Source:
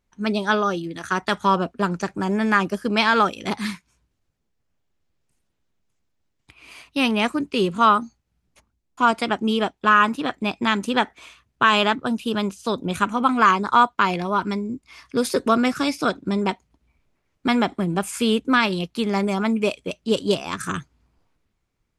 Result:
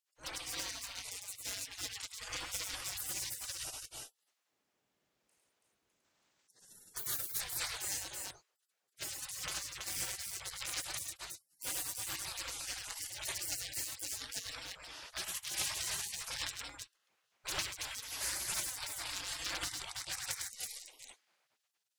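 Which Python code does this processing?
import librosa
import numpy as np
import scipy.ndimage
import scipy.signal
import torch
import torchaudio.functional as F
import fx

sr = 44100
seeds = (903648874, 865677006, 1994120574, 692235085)

p1 = fx.spec_box(x, sr, start_s=6.04, length_s=1.3, low_hz=510.0, high_hz=8900.0, gain_db=8)
p2 = 10.0 ** (-15.0 / 20.0) * (np.abs((p1 / 10.0 ** (-15.0 / 20.0) + 3.0) % 4.0 - 2.0) - 1.0)
p3 = fx.peak_eq(p2, sr, hz=92.0, db=-3.0, octaves=2.3)
p4 = p3 + fx.echo_multitap(p3, sr, ms=(66, 103, 329), db=(-19.5, -3.5, -3.5), dry=0)
y = fx.spec_gate(p4, sr, threshold_db=-30, keep='weak')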